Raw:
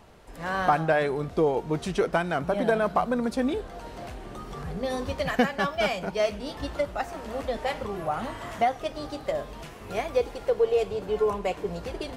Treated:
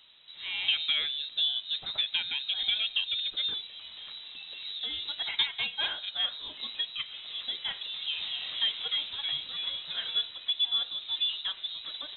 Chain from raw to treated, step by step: 7.74–10.26 s: ever faster or slower copies 196 ms, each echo -2 st, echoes 3; frequency inversion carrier 3.9 kHz; trim -6 dB

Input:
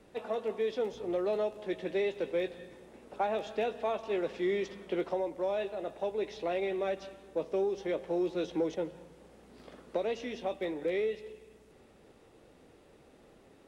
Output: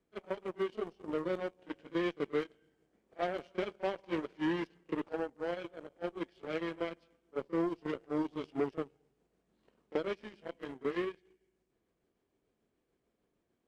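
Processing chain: rotating-head pitch shifter -2.5 st; Chebyshev shaper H 7 -18 dB, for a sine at -20 dBFS; pre-echo 33 ms -19.5 dB; trim -1.5 dB

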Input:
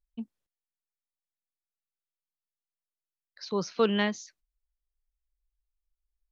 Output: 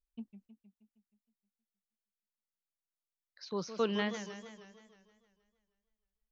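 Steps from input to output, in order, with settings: modulated delay 157 ms, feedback 59%, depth 198 cents, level -10.5 dB; trim -7 dB

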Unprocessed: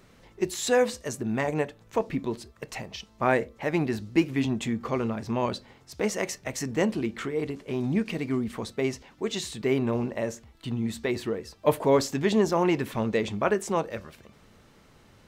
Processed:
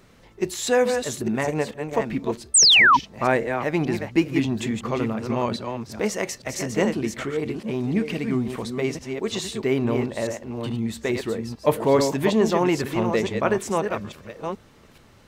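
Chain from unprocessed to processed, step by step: chunks repeated in reverse 428 ms, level -6 dB; painted sound fall, 2.54–2.97 s, 890–9000 Hz -16 dBFS; trim +2.5 dB

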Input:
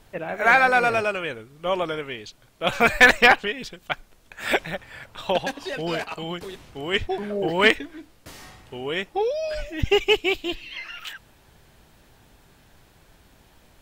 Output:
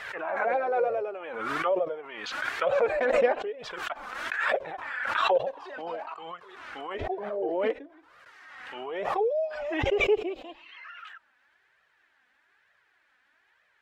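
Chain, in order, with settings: flange 1.1 Hz, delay 1.5 ms, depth 2.6 ms, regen +8%; auto-wah 530–1800 Hz, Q 3, down, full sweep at -23.5 dBFS; swell ahead of each attack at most 34 dB/s; trim +2 dB

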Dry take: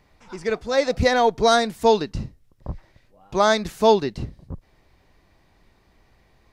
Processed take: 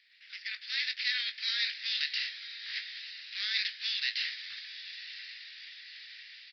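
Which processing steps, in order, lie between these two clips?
spectral contrast reduction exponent 0.51; reverse; compression 20:1, threshold -29 dBFS, peak gain reduction 20.5 dB; reverse; peak limiter -26 dBFS, peak gain reduction 9.5 dB; level rider gain up to 11 dB; elliptic high-pass 1.8 kHz, stop band 50 dB; doubling 20 ms -9 dB; echo that smears into a reverb 1003 ms, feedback 51%, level -12 dB; on a send at -22 dB: reverberation, pre-delay 3 ms; on the sum: resampled via 11.025 kHz; Opus 32 kbps 48 kHz

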